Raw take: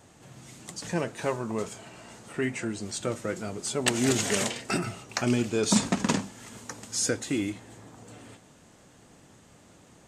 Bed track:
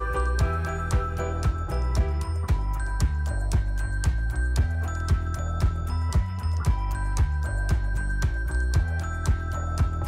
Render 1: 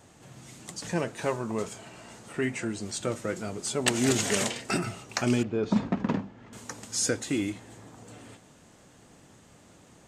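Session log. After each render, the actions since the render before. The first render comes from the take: 5.43–6.53 tape spacing loss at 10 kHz 39 dB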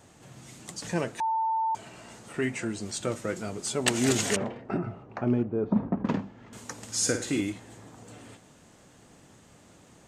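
1.2–1.75 bleep 893 Hz -24 dBFS; 4.36–6.05 LPF 1000 Hz; 6.75–7.41 flutter echo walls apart 9.1 m, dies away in 0.41 s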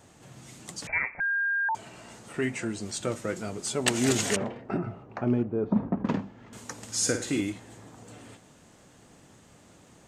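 0.87–1.69 inverted band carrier 2500 Hz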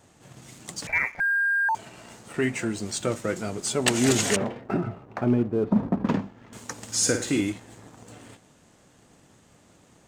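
sample leveller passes 1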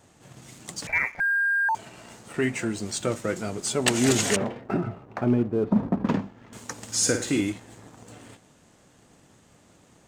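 nothing audible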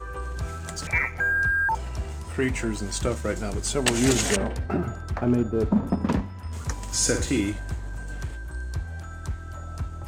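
add bed track -8 dB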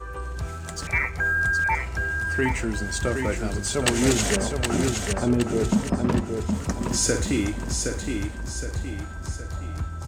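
feedback echo 0.767 s, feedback 44%, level -5 dB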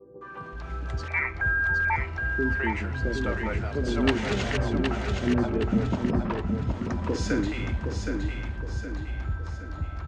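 air absorption 240 m; three bands offset in time mids, highs, lows 0.21/0.52 s, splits 160/500 Hz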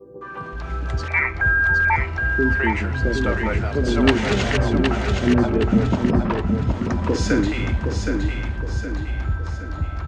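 gain +7 dB

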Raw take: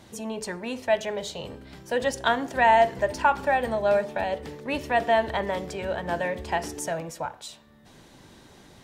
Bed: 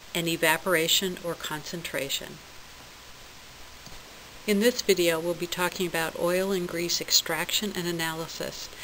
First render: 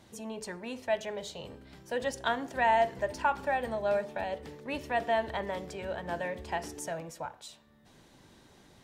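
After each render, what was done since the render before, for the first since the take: gain -7 dB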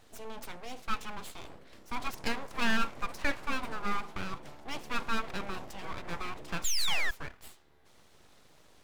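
6.64–7.11 painted sound fall 810–3800 Hz -25 dBFS; full-wave rectifier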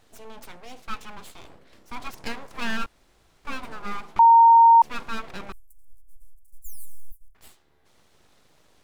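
2.86–3.45 room tone; 4.19–4.82 bleep 922 Hz -9.5 dBFS; 5.52–7.35 inverse Chebyshev band-stop 150–2800 Hz, stop band 70 dB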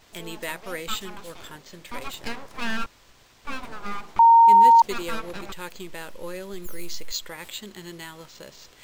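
add bed -10 dB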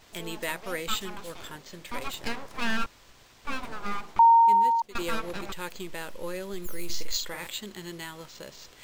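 3.94–4.95 fade out, to -20 dB; 6.85–7.47 doubler 47 ms -5.5 dB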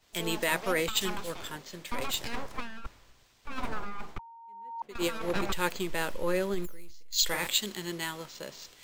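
negative-ratio compressor -32 dBFS, ratio -1; three-band expander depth 70%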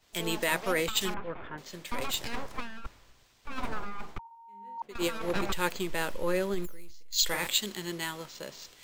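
1.14–1.58 LPF 2200 Hz 24 dB/oct; 4.23–4.78 flutter echo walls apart 3.4 m, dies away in 0.56 s

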